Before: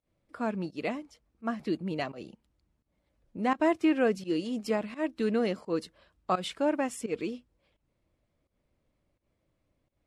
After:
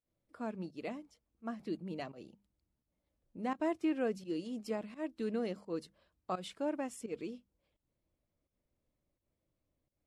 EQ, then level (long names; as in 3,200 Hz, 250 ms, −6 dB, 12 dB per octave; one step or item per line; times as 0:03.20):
parametric band 1,900 Hz −4 dB 2.4 octaves
mains-hum notches 50/100/150/200 Hz
−7.5 dB